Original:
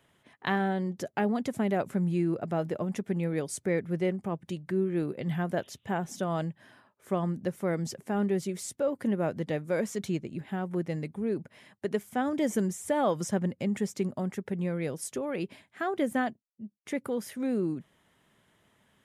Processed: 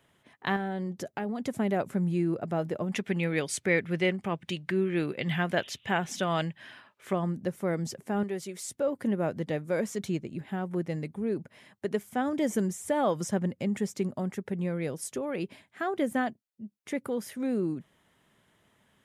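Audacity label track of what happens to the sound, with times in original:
0.560000	1.430000	downward compressor, threshold −29 dBFS
2.920000	7.130000	parametric band 2,700 Hz +13 dB 2 octaves
8.230000	8.690000	low-shelf EQ 330 Hz −11.5 dB

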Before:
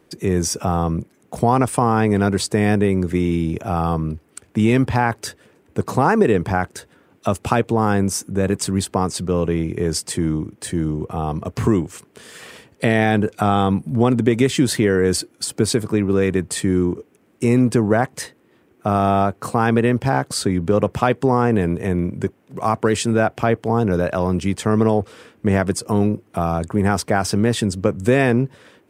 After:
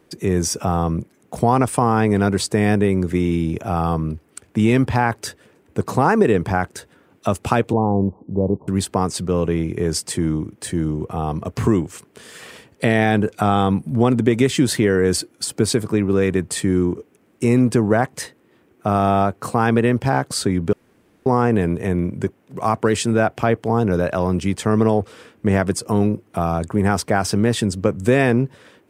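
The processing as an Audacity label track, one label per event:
7.730000	8.680000	Butterworth low-pass 1,000 Hz 72 dB per octave
20.730000	21.260000	fill with room tone

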